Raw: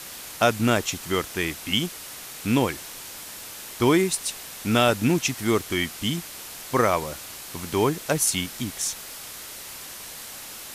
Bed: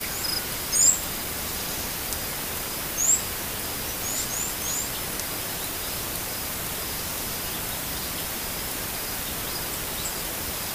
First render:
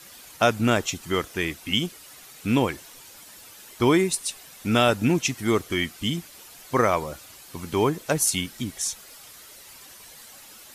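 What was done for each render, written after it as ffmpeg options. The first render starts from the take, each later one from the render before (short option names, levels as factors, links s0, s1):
-af "afftdn=nr=10:nf=-39"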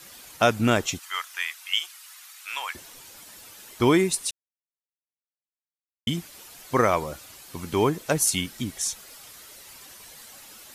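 -filter_complex "[0:a]asettb=1/sr,asplit=3[s0][s1][s2];[s0]atrim=end=0.994[s3];[s1]atrim=start=0.99:end=2.75,asetpts=PTS-STARTPTS,afade=t=in:d=0.004:c=qsin,afade=t=out:st=1.756:d=0.004:c=qsin,highpass=f=1000:w=0.5412,highpass=f=1000:w=1.3066[s4];[s2]atrim=start=2.746[s5];[s3][s4]acrossfade=d=0.004:c1=hsin:c2=qsin[s6];[s6][s5]acrossfade=d=0.004:c1=qsin:c2=hsin,asplit=3[s7][s8][s9];[s7]atrim=end=4.31,asetpts=PTS-STARTPTS,afade=t=out:st=4.306:d=0.004:c=hsin[s10];[s8]atrim=start=4.31:end=6.07,asetpts=PTS-STARTPTS,volume=0[s11];[s9]atrim=start=6.07,asetpts=PTS-STARTPTS,afade=t=in:d=0.004:c=hsin[s12];[s10][s11][s12]concat=n=3:v=0:a=1"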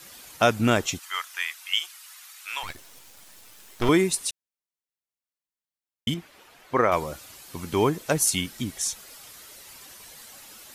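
-filter_complex "[0:a]asettb=1/sr,asplit=3[s0][s1][s2];[s0]atrim=end=2.634[s3];[s1]atrim=start=2.63:end=3.89,asetpts=PTS-STARTPTS,afade=t=in:d=0.004:c=qsin,afade=t=out:st=1.256:d=0.004:c=qsin,aeval=exprs='max(val(0),0)':c=same[s4];[s2]atrim=start=3.886[s5];[s3][s4]acrossfade=d=0.004:c1=hsin:c2=qsin[s6];[s6][s5]acrossfade=d=0.004:c1=qsin:c2=hsin,asettb=1/sr,asplit=3[s7][s8][s9];[s7]atrim=end=6.144[s10];[s8]atrim=start=6.14:end=6.92,asetpts=PTS-STARTPTS,afade=t=in:d=0.004:c=qsin,afade=t=out:st=0.776:d=0.004:c=qsin,bass=f=250:g=-6,treble=f=4000:g=-15[s11];[s9]atrim=start=6.916[s12];[s10][s11]acrossfade=d=0.004:c1=hsin:c2=qsin[s13];[s13][s12]acrossfade=d=0.004:c1=qsin:c2=hsin"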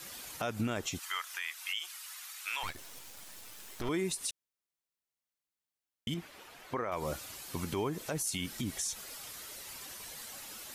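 -af "acompressor=threshold=0.0562:ratio=3,alimiter=level_in=1.06:limit=0.0631:level=0:latency=1:release=114,volume=0.944"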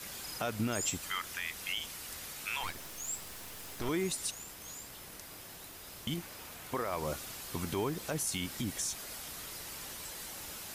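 -filter_complex "[1:a]volume=0.119[s0];[0:a][s0]amix=inputs=2:normalize=0"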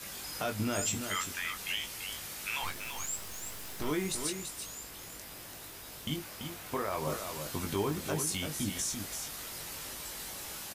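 -filter_complex "[0:a]asplit=2[s0][s1];[s1]adelay=20,volume=0.562[s2];[s0][s2]amix=inputs=2:normalize=0,asplit=2[s3][s4];[s4]aecho=0:1:337:0.447[s5];[s3][s5]amix=inputs=2:normalize=0"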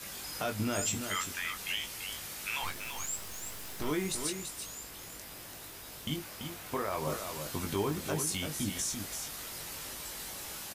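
-af anull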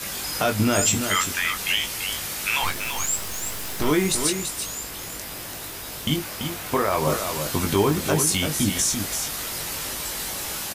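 -af "volume=3.98"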